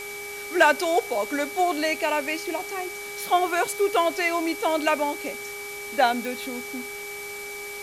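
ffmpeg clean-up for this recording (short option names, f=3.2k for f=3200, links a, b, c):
-af "adeclick=t=4,bandreject=f=408.1:t=h:w=4,bandreject=f=816.2:t=h:w=4,bandreject=f=1.2243k:t=h:w=4,bandreject=f=1.6324k:t=h:w=4,bandreject=f=2.0405k:t=h:w=4,bandreject=f=2.3k:w=30,afwtdn=0.01"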